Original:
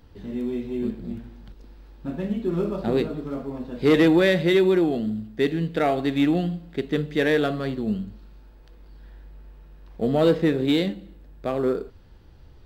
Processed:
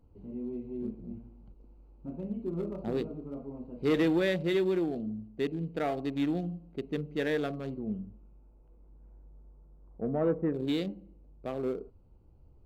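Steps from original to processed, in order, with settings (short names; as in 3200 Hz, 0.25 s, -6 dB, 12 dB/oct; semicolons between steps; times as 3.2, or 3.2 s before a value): Wiener smoothing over 25 samples; 7.78–10.53 LPF 3200 Hz -> 1600 Hz 24 dB/oct; gain -9 dB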